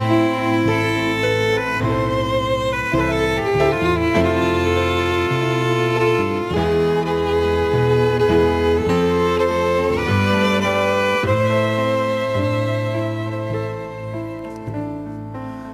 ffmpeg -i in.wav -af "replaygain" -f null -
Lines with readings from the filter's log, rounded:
track_gain = +0.8 dB
track_peak = 0.461